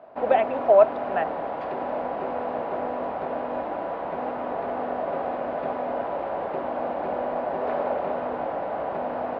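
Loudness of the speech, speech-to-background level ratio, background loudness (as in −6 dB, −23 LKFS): −21.5 LKFS, 8.0 dB, −29.5 LKFS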